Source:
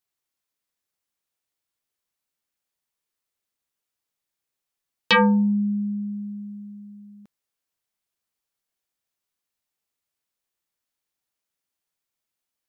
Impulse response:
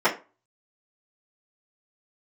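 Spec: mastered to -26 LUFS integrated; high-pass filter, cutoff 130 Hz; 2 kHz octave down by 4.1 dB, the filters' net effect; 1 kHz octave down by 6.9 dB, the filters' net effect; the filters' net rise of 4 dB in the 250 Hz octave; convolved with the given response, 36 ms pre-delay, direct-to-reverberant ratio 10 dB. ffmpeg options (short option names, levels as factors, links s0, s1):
-filter_complex "[0:a]highpass=130,equalizer=f=250:t=o:g=6.5,equalizer=f=1000:t=o:g=-7.5,equalizer=f=2000:t=o:g=-3,asplit=2[s0][s1];[1:a]atrim=start_sample=2205,adelay=36[s2];[s1][s2]afir=irnorm=-1:irlink=0,volume=0.0398[s3];[s0][s3]amix=inputs=2:normalize=0,volume=0.531"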